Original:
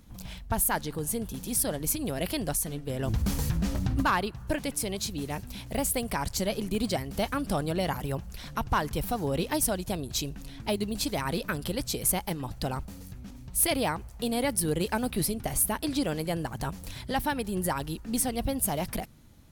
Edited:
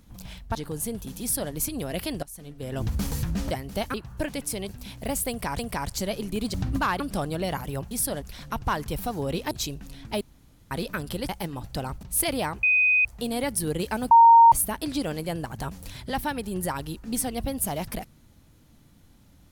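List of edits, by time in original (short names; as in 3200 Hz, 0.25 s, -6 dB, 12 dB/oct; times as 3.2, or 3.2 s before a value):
0.55–0.82 cut
1.48–1.79 copy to 8.27
2.5–3.05 fade in linear, from -23.5 dB
3.78–4.24 swap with 6.93–7.36
4.99–5.38 cut
5.98–6.28 loop, 2 plays
9.56–10.06 cut
10.76–11.26 room tone
11.84–12.16 cut
12.9–13.46 cut
14.06 add tone 2500 Hz -17 dBFS 0.42 s
15.12–15.53 bleep 924 Hz -9.5 dBFS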